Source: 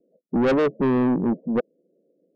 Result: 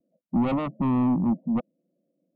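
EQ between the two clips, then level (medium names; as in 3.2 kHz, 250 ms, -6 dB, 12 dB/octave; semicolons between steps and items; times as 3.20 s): treble shelf 2.9 kHz -11.5 dB; dynamic bell 200 Hz, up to +4 dB, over -34 dBFS, Q 1.1; static phaser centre 1.6 kHz, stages 6; 0.0 dB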